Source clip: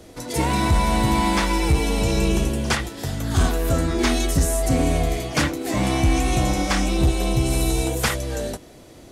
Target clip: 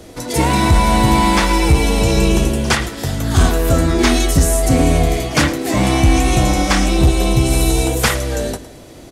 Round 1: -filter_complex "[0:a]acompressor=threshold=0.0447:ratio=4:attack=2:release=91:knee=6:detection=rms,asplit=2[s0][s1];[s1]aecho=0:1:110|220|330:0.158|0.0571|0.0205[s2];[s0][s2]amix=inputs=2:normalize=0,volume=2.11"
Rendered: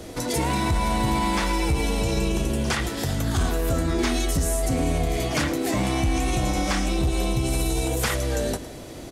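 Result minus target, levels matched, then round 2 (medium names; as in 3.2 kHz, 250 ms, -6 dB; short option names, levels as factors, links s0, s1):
compression: peak gain reduction +12 dB
-filter_complex "[0:a]asplit=2[s0][s1];[s1]aecho=0:1:110|220|330:0.158|0.0571|0.0205[s2];[s0][s2]amix=inputs=2:normalize=0,volume=2.11"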